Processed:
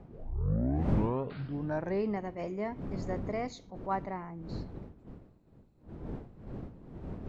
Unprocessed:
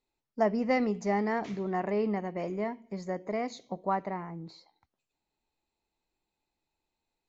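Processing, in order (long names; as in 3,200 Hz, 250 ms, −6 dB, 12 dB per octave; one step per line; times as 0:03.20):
turntable start at the beginning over 2.07 s
wind on the microphone 240 Hz −38 dBFS
level that may rise only so fast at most 200 dB per second
level −2.5 dB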